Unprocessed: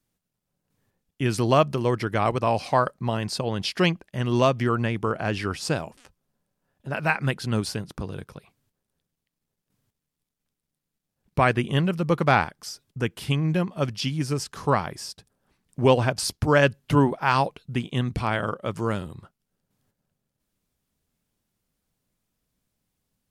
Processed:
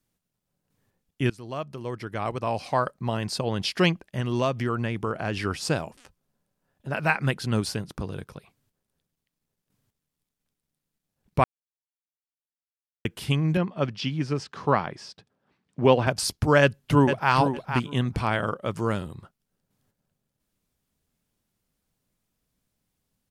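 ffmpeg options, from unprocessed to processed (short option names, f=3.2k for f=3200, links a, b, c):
-filter_complex "[0:a]asettb=1/sr,asplit=3[a][b][c];[a]atrim=end=4.204[d];[b]atrim=start=4.2:end=5.37,asetpts=PTS-STARTPTS,afade=t=in:d=0.004:c=qsin,afade=t=out:st=1.166:d=0.004:c=qsin,acompressor=threshold=-28dB:ratio=1.5:attack=3.2:release=140:knee=1:detection=peak[e];[c]atrim=start=5.366[f];[d][e]acrossfade=d=0.004:c1=hsin:c2=qsin[g];[g][f]acrossfade=d=0.004:c1=qsin:c2=hsin,asettb=1/sr,asplit=3[h][i][j];[h]atrim=end=13.574[k];[i]atrim=start=13.57:end=16.07,asetpts=PTS-STARTPTS,afade=t=in:d=0.004:c=qsin,afade=t=out:st=2.496:d=0.004:c=qsin,highpass=120,lowpass=3.9k[l];[j]atrim=start=16.066[m];[k][l]acrossfade=d=0.004:c1=hsin:c2=qsin[n];[n][m]acrossfade=d=0.004:c1=qsin:c2=hsin,asplit=2[o][p];[p]afade=t=in:st=16.61:d=0.01,afade=t=out:st=17.33:d=0.01,aecho=0:1:460|920:0.421697|0.0632545[q];[o][q]amix=inputs=2:normalize=0,asplit=4[r][s][t][u];[r]atrim=end=1.3,asetpts=PTS-STARTPTS,afade=t=out:st=1.296:d=0.004:c=hsin:silence=0.0794328[v];[s]atrim=start=1.3:end=11.44,asetpts=PTS-STARTPTS,afade=t=in:d=2.23:silence=0.0794328,afade=t=out:st=10.136:d=0.004:c=hsin[w];[t]atrim=start=11.44:end=13.05,asetpts=PTS-STARTPTS,volume=0[x];[u]atrim=start=13.05,asetpts=PTS-STARTPTS,afade=t=in:d=0.004:c=hsin[y];[v][w][x][y]concat=n=4:v=0:a=1"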